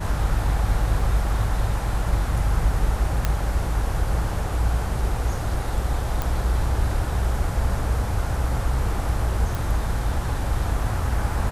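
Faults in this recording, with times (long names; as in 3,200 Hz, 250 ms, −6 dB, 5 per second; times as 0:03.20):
0:01.00: drop-out 2.4 ms
0:03.25: click −8 dBFS
0:06.22: click
0:09.55: click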